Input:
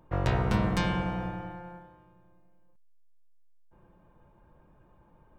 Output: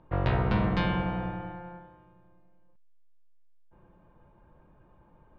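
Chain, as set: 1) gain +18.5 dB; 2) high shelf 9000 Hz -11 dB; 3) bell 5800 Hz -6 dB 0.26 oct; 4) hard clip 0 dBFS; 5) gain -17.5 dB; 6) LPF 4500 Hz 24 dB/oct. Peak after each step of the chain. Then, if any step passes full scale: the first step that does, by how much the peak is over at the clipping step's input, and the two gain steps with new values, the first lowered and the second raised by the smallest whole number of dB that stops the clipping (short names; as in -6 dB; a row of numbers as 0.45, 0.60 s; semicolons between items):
+5.5, +5.5, +5.5, 0.0, -17.5, -17.0 dBFS; step 1, 5.5 dB; step 1 +12.5 dB, step 5 -11.5 dB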